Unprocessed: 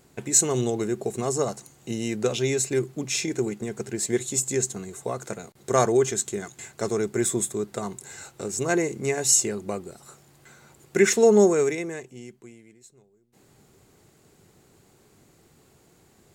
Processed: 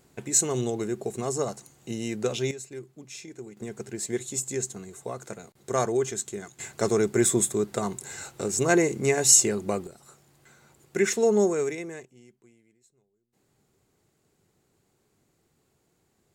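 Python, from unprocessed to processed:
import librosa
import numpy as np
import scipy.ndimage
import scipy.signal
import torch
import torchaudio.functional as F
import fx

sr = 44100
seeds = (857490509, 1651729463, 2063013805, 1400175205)

y = fx.gain(x, sr, db=fx.steps((0.0, -3.0), (2.51, -15.0), (3.57, -5.0), (6.6, 2.5), (9.87, -5.0), (12.05, -12.0)))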